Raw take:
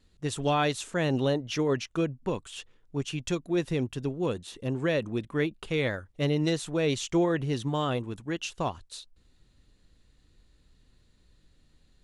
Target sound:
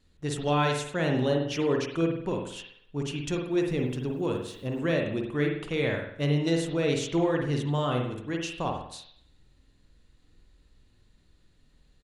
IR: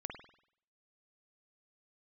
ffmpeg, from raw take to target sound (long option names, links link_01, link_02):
-filter_complex "[1:a]atrim=start_sample=2205[link_01];[0:a][link_01]afir=irnorm=-1:irlink=0,aresample=32000,aresample=44100,asettb=1/sr,asplit=3[link_02][link_03][link_04];[link_02]atrim=end=3.514[link_05];[link_03]atrim=start=3.51:end=4.93,asetpts=PTS-STARTPTS,afade=type=in:duration=0.004:curve=qsin,afade=type=out:start_time=1.416:duration=0.004:curve=qsin,aeval=exprs='val(0)*gte(abs(val(0)),0.00119)':channel_layout=same[link_06];[link_04]atrim=start=4.926[link_07];[link_05][link_06]acrossfade=duration=0.004:curve1=hsin:curve2=qsin[link_08];[link_08][link_07]acrossfade=duration=0.004:curve1=qsin:curve2=hsin,volume=2.5dB"